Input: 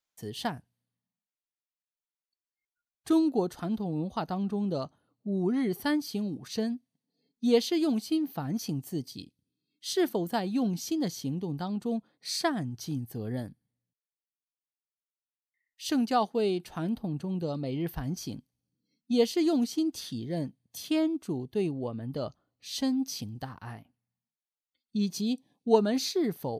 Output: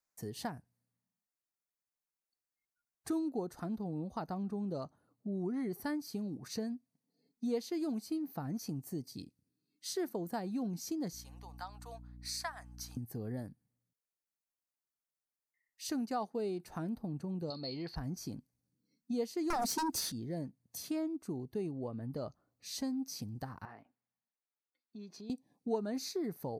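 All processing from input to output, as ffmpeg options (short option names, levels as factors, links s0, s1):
-filter_complex "[0:a]asettb=1/sr,asplit=3[s0][s1][s2];[s0]atrim=end=11.134[s3];[s1]atrim=start=11.13:end=12.97,asetpts=PTS-STARTPTS,afade=t=in:d=0.004:c=qsin,afade=t=out:st=1.836:d=0.004:c=qsin,highpass=f=840:w=0.5412,highpass=f=840:w=1.3066,aeval=exprs='val(0)+0.00316*(sin(2*PI*60*n/s)+sin(2*PI*2*60*n/s)/2+sin(2*PI*3*60*n/s)/3+sin(2*PI*4*60*n/s)/4+sin(2*PI*5*60*n/s)/5)':c=same[s4];[s2]atrim=start=12.966[s5];[s3][s4]acrossfade=d=0.004:c1=hsin:c2=qsin[s6];[s6][s5]acrossfade=d=0.004:c1=qsin:c2=hsin,asettb=1/sr,asplit=3[s7][s8][s9];[s7]atrim=end=17.504[s10];[s8]atrim=start=17.5:end=17.96,asetpts=PTS-STARTPTS,afade=t=in:d=0.004:c=qsin,afade=t=out:st=0.456:d=0.004:c=qsin,lowpass=f=4400:t=q:w=15,lowshelf=f=340:g=-9[s11];[s9]atrim=start=17.956[s12];[s10][s11]acrossfade=d=0.004:c1=hsin:c2=qsin[s13];[s13][s12]acrossfade=d=0.004:c1=qsin:c2=hsin,asettb=1/sr,asplit=3[s14][s15][s16];[s14]atrim=end=19.504[s17];[s15]atrim=start=19.5:end=20.12,asetpts=PTS-STARTPTS,afade=t=in:d=0.004:c=qsin,afade=t=out:st=0.616:d=0.004:c=qsin,highshelf=f=5400:g=5,aeval=exprs='0.119*sin(PI/2*3.55*val(0)/0.119)':c=same[s18];[s16]atrim=start=20.116[s19];[s17][s18]acrossfade=d=0.004:c1=hsin:c2=qsin[s20];[s20][s19]acrossfade=d=0.004:c1=qsin:c2=hsin,asettb=1/sr,asplit=3[s21][s22][s23];[s21]atrim=end=23.654[s24];[s22]atrim=start=23.65:end=25.3,asetpts=PTS-STARTPTS,afade=t=in:d=0.004:c=qsin,afade=t=out:st=1.646:d=0.004:c=qsin,acrossover=split=280 4300:gain=0.158 1 0.0708[s25][s26][s27];[s25][s26][s27]amix=inputs=3:normalize=0,acompressor=threshold=0.00398:ratio=3:attack=3.2:release=140:knee=1:detection=peak[s28];[s23]atrim=start=25.296[s29];[s24][s28]acrossfade=d=0.004:c1=hsin:c2=qsin[s30];[s30][s29]acrossfade=d=0.004:c1=qsin:c2=hsin,equalizer=f=3200:w=2.5:g=-13.5,acompressor=threshold=0.00891:ratio=2"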